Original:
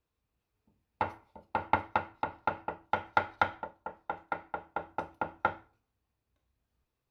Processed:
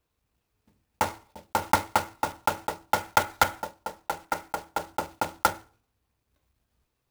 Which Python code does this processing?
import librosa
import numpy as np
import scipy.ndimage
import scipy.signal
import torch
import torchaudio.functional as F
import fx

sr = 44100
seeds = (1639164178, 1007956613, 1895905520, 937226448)

y = fx.block_float(x, sr, bits=3)
y = y * 10.0 ** (5.5 / 20.0)